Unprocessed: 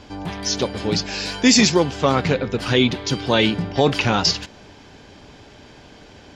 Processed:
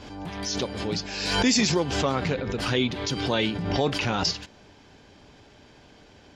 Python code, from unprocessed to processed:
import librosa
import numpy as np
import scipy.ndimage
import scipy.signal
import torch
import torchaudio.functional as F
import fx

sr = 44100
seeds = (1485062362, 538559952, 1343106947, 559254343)

y = fx.pre_swell(x, sr, db_per_s=44.0)
y = y * 10.0 ** (-8.0 / 20.0)